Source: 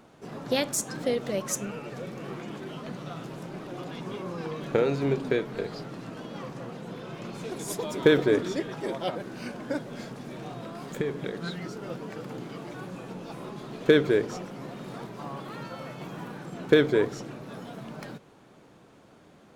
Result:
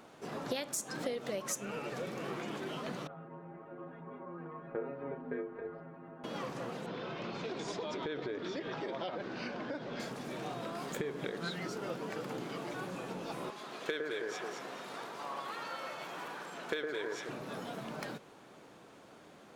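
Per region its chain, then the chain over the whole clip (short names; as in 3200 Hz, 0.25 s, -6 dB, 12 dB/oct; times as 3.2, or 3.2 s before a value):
3.07–6.24 LPF 1700 Hz 24 dB/oct + metallic resonator 81 Hz, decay 0.34 s, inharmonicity 0.008
6.86–10 LPF 5100 Hz 24 dB/oct + compressor, threshold -33 dBFS
13.5–17.29 HPF 930 Hz 6 dB/oct + high shelf 11000 Hz -5 dB + echo with dull and thin repeats by turns 0.108 s, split 1700 Hz, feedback 52%, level -2.5 dB
whole clip: low shelf 210 Hz -11 dB; compressor 8:1, threshold -35 dBFS; gain +1.5 dB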